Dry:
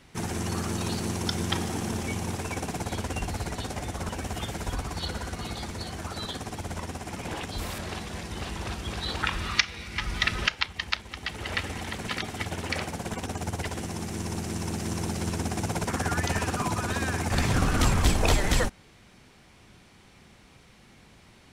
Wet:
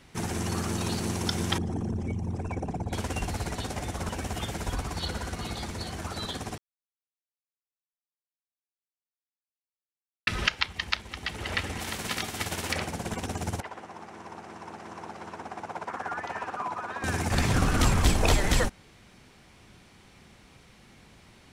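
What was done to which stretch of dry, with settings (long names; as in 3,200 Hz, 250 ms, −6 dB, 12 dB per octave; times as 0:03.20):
0:01.58–0:02.93: spectral envelope exaggerated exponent 2
0:06.58–0:10.27: silence
0:11.79–0:12.72: spectral envelope flattened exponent 0.6
0:13.60–0:17.04: resonant band-pass 1,000 Hz, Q 1.3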